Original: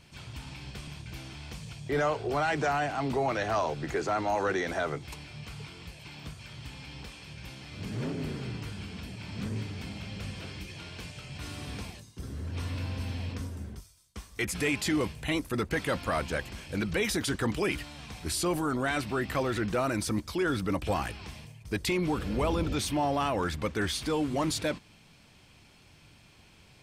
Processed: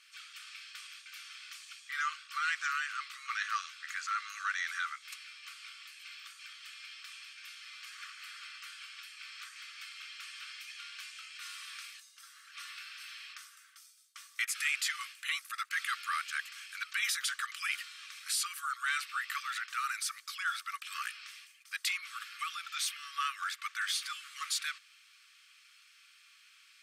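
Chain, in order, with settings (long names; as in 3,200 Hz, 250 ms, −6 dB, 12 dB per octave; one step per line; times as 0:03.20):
linear-phase brick-wall high-pass 1,100 Hz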